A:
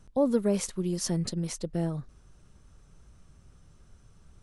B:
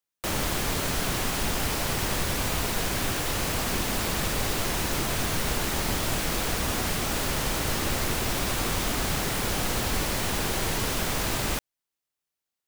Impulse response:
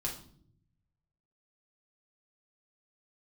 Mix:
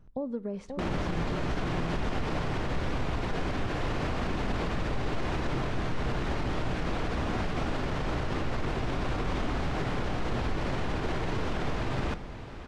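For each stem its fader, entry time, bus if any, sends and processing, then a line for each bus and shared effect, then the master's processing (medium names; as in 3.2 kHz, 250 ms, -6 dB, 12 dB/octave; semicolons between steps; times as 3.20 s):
-1.0 dB, 0.00 s, send -19 dB, echo send -5.5 dB, compression 3:1, threshold -31 dBFS, peak gain reduction 9 dB
+1.0 dB, 0.55 s, send -13 dB, echo send -14.5 dB, none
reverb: on, pre-delay 3 ms
echo: feedback delay 534 ms, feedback 53%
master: tape spacing loss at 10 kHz 31 dB; peak limiter -21.5 dBFS, peak gain reduction 8 dB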